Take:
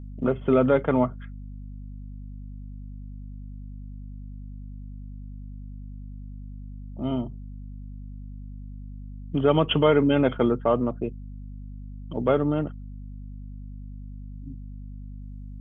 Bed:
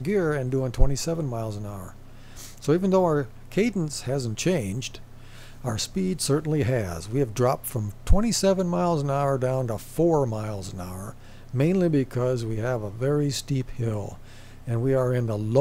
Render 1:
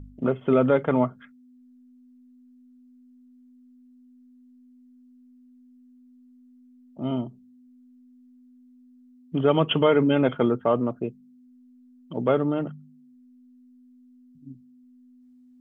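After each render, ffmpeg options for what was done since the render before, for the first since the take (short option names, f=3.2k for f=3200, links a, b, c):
-af "bandreject=f=50:t=h:w=4,bandreject=f=100:t=h:w=4,bandreject=f=150:t=h:w=4,bandreject=f=200:t=h:w=4"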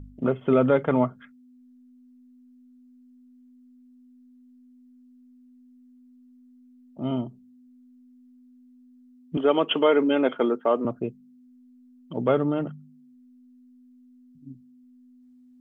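-filter_complex "[0:a]asettb=1/sr,asplit=3[a][b][c];[a]atrim=end=9.374[d];[b]atrim=start=9.37:end=10.85,asetpts=PTS-STARTPTS,afade=t=in:d=0.004:c=qsin,afade=t=out:st=1.476:d=0.004:c=qsin,highpass=f=250:w=0.5412,highpass=f=250:w=1.3066[e];[c]atrim=start=10.846[f];[d][e]acrossfade=d=0.004:c1=hsin:c2=qsin[g];[g][f]acrossfade=d=0.004:c1=qsin:c2=hsin"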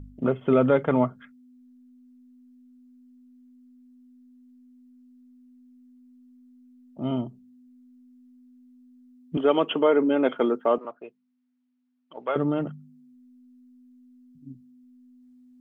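-filter_complex "[0:a]asettb=1/sr,asplit=3[a][b][c];[a]atrim=end=9.714[d];[b]atrim=start=9.71:end=10.23,asetpts=PTS-STARTPTS,afade=t=in:d=0.004:c=qsin,afade=t=out:st=0.516:d=0.004:c=qsin,equalizer=f=3.3k:w=0.82:g=-8[e];[c]atrim=start=10.226[f];[d][e]acrossfade=d=0.004:c1=hsin:c2=qsin[g];[g][f]acrossfade=d=0.004:c1=qsin:c2=hsin,asettb=1/sr,asplit=3[h][i][j];[h]atrim=end=10.784[k];[i]atrim=start=10.78:end=12.36,asetpts=PTS-STARTPTS,afade=t=in:d=0.004:c=qsin,afade=t=out:st=1.576:d=0.004:c=qsin,highpass=760,lowpass=3.2k[l];[j]atrim=start=12.356[m];[k][l]acrossfade=d=0.004:c1=hsin:c2=qsin[n];[n][m]acrossfade=d=0.004:c1=qsin:c2=hsin"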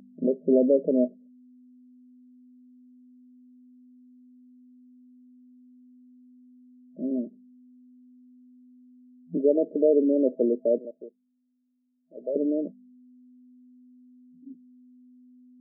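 -af "afftfilt=real='re*between(b*sr/4096,170,650)':imag='im*between(b*sr/4096,170,650)':win_size=4096:overlap=0.75"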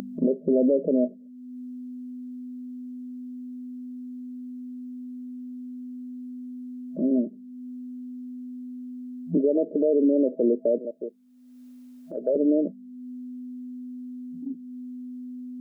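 -filter_complex "[0:a]asplit=2[a][b];[b]acompressor=mode=upward:threshold=-25dB:ratio=2.5,volume=-1dB[c];[a][c]amix=inputs=2:normalize=0,alimiter=limit=-13.5dB:level=0:latency=1:release=72"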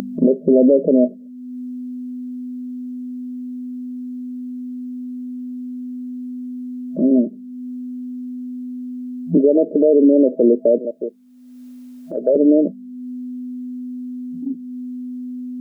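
-af "volume=8.5dB"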